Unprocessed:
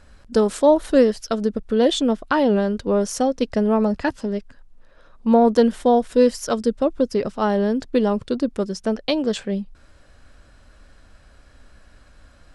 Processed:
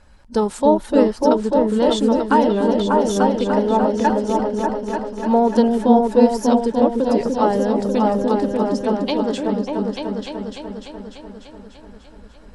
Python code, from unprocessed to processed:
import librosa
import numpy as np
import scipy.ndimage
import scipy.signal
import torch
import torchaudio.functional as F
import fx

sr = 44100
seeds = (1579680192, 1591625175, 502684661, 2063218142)

p1 = fx.spec_quant(x, sr, step_db=15)
p2 = fx.peak_eq(p1, sr, hz=890.0, db=11.0, octaves=0.22)
p3 = p2 + fx.echo_opening(p2, sr, ms=296, hz=400, octaves=2, feedback_pct=70, wet_db=0, dry=0)
y = p3 * 10.0 ** (-1.5 / 20.0)